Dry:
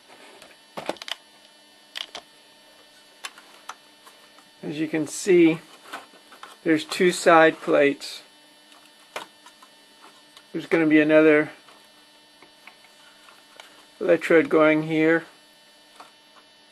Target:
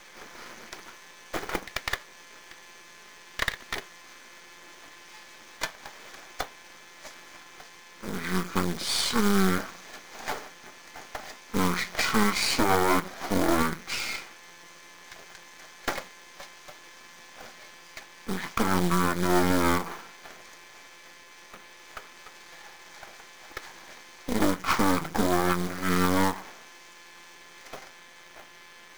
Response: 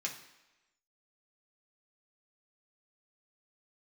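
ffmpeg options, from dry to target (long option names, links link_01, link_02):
-af "asetrate=25442,aresample=44100,highpass=frequency=170:width=0.5412,highpass=frequency=170:width=1.3066,aeval=exprs='max(val(0),0)':channel_layout=same,acrusher=bits=4:mode=log:mix=0:aa=0.000001,alimiter=limit=-16.5dB:level=0:latency=1:release=209,tiltshelf=frequency=650:gain=-4,bandreject=frequency=2700:width=9.6,volume=6dB"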